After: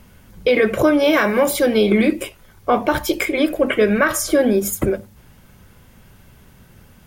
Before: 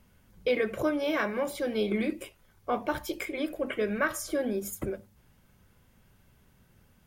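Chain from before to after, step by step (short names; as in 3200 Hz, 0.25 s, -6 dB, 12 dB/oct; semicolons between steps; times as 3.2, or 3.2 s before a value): 1.13–1.66 high shelf 7800 Hz +8 dB; maximiser +19.5 dB; gain -5 dB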